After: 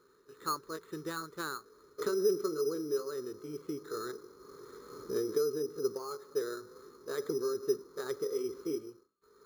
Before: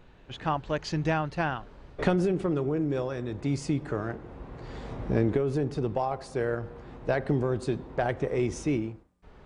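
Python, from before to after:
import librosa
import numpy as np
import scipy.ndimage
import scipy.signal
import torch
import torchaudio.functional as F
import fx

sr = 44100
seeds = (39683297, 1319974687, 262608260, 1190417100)

y = fx.pitch_ramps(x, sr, semitones=1.5, every_ms=458)
y = fx.double_bandpass(y, sr, hz=720.0, octaves=1.6)
y = np.repeat(scipy.signal.resample_poly(y, 1, 8), 8)[:len(y)]
y = F.gain(torch.from_numpy(y), 3.0).numpy()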